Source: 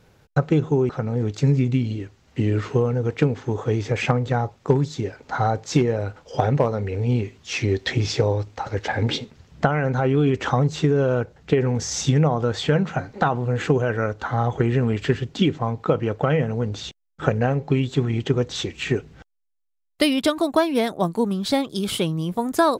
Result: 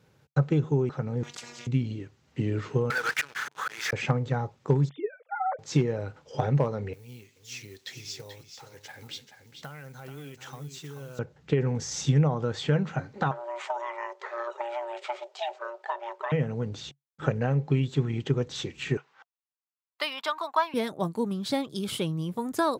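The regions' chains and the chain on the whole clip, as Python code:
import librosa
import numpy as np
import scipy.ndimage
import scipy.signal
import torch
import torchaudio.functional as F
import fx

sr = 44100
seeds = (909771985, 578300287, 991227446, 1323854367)

y = fx.chain(x, sr, fx.robotise(hz=240.0),
    fx.spectral_comp(ratio=10.0), at=(1.23, 1.67))
y = fx.chain(y, sr, fx.auto_swell(attack_ms=300.0),
    fx.highpass_res(hz=1500.0, q=3.6),
    fx.leveller(passes=5), at=(2.9, 3.93))
y = fx.chain(y, sr, fx.sine_speech(),
    fx.highpass(hz=240.0, slope=12), at=(4.89, 5.59))
y = fx.chain(y, sr, fx.law_mismatch(coded='mu'),
    fx.pre_emphasis(coefficient=0.9),
    fx.echo_single(ms=433, db=-9.0), at=(6.93, 11.19))
y = fx.chain(y, sr, fx.ring_mod(carrier_hz=470.0),
    fx.brickwall_highpass(low_hz=370.0), at=(13.31, 16.32))
y = fx.chain(y, sr, fx.highpass_res(hz=990.0, q=2.8),
    fx.peak_eq(hz=9900.0, db=-12.5, octaves=0.93), at=(18.97, 20.74))
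y = scipy.signal.sosfilt(scipy.signal.butter(2, 84.0, 'highpass', fs=sr, output='sos'), y)
y = fx.peak_eq(y, sr, hz=140.0, db=7.5, octaves=0.23)
y = fx.notch(y, sr, hz=700.0, q=13.0)
y = F.gain(torch.from_numpy(y), -7.0).numpy()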